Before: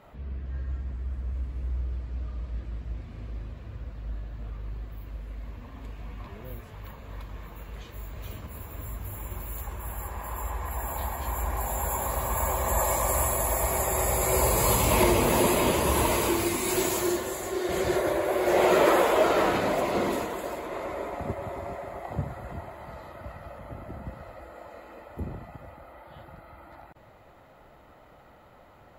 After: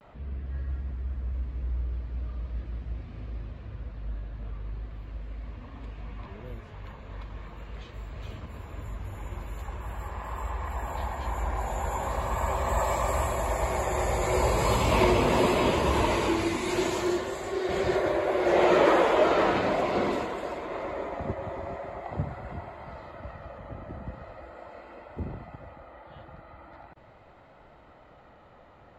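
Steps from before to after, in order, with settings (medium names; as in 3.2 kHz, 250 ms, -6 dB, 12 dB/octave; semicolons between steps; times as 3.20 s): low-pass 4.9 kHz 12 dB/octave; vibrato 0.41 Hz 41 cents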